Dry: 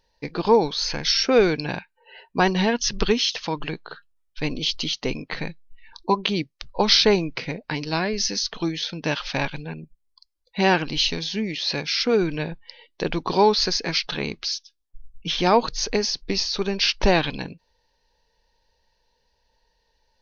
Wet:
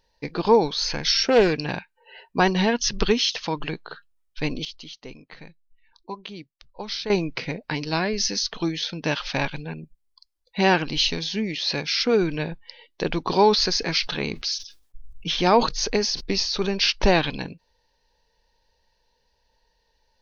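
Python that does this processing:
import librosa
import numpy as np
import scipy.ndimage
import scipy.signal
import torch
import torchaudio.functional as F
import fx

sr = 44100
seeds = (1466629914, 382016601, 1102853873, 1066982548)

y = fx.doppler_dist(x, sr, depth_ms=0.16, at=(1.09, 1.72))
y = fx.sustainer(y, sr, db_per_s=110.0, at=(13.24, 16.82))
y = fx.edit(y, sr, fx.fade_down_up(start_s=4.44, length_s=2.87, db=-14.0, fade_s=0.21, curve='log'), tone=tone)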